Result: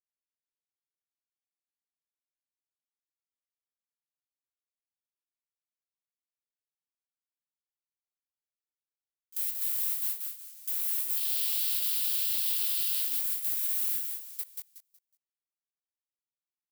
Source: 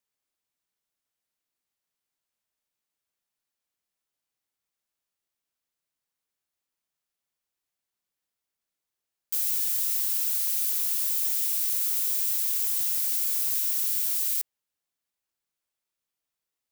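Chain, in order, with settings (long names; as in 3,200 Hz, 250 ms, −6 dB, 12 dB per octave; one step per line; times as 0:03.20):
0:11.17–0:13.01: flat-topped bell 3,700 Hz +10 dB 1.1 octaves
noise gate with hold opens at −15 dBFS
chorus effect 0.16 Hz, delay 17 ms, depth 6.9 ms
on a send: repeating echo 184 ms, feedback 26%, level −4.5 dB
on the sum: dynamic equaliser 6,100 Hz, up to −8 dB, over −51 dBFS, Q 1.4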